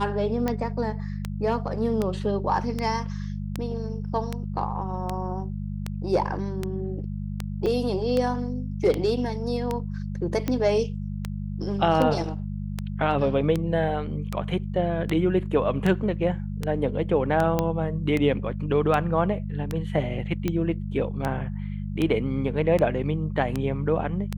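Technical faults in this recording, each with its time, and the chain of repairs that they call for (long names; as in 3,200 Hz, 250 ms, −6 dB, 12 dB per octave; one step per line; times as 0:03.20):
mains hum 50 Hz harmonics 4 −31 dBFS
scratch tick 78 rpm −13 dBFS
0:07.66–0:07.67: drop-out 5.3 ms
0:17.59: click −10 dBFS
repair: click removal
hum removal 50 Hz, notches 4
repair the gap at 0:07.66, 5.3 ms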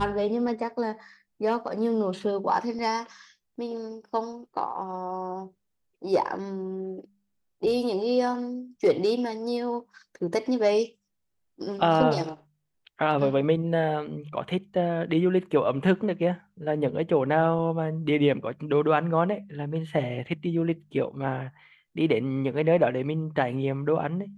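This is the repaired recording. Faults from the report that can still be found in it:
none of them is left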